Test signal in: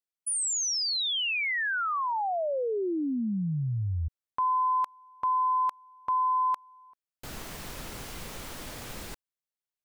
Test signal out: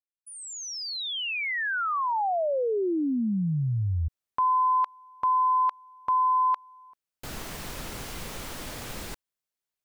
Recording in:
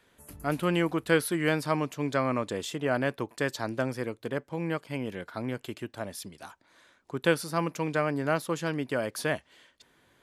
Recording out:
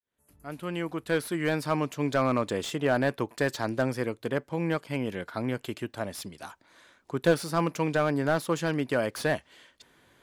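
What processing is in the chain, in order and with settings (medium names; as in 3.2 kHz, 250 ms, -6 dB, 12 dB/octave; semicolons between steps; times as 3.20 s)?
fade-in on the opening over 2.23 s; slew-rate limiter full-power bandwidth 84 Hz; trim +3 dB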